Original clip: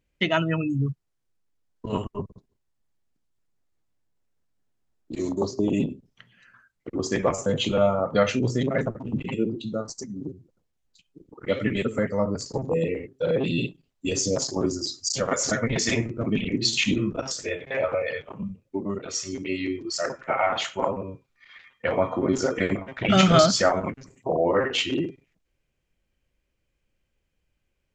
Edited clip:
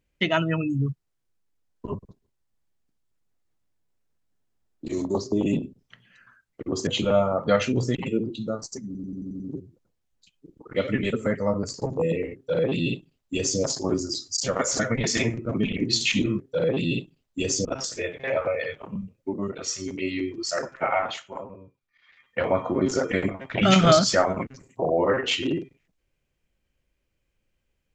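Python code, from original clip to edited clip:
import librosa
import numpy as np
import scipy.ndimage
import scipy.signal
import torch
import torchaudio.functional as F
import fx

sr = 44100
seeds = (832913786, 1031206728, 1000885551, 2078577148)

y = fx.edit(x, sr, fx.cut(start_s=1.87, length_s=0.27),
    fx.cut(start_s=7.14, length_s=0.4),
    fx.cut(start_s=8.62, length_s=0.59),
    fx.stutter(start_s=10.12, slice_s=0.09, count=7),
    fx.duplicate(start_s=13.07, length_s=1.25, to_s=17.12),
    fx.fade_down_up(start_s=20.39, length_s=1.47, db=-11.0, fade_s=0.31), tone=tone)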